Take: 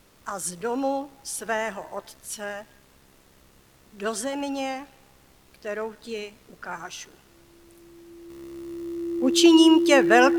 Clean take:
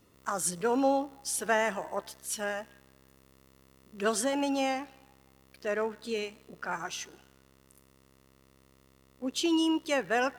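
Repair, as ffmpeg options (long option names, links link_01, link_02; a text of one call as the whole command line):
ffmpeg -i in.wav -af "bandreject=frequency=340:width=30,agate=range=-21dB:threshold=-49dB,asetnsamples=nb_out_samples=441:pad=0,asendcmd='8.3 volume volume -11dB',volume=0dB" out.wav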